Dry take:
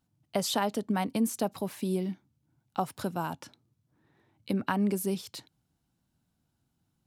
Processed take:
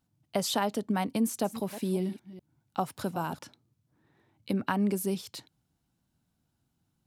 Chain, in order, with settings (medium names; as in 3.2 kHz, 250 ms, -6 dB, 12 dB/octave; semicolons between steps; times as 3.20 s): 1.20–3.43 s: chunks repeated in reverse 199 ms, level -13.5 dB